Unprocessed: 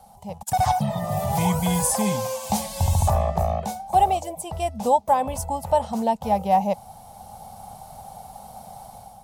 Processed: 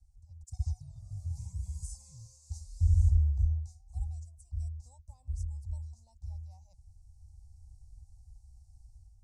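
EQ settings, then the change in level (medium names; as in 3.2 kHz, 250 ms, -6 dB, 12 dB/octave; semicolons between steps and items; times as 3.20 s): inverse Chebyshev band-stop 190–3400 Hz, stop band 50 dB; low-pass 4.6 kHz 24 dB/octave; +2.5 dB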